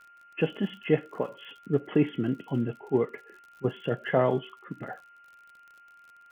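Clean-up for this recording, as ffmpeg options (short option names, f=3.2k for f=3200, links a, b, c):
-af "adeclick=t=4,bandreject=f=1.4k:w=30,afftdn=nr=18:nf=-55"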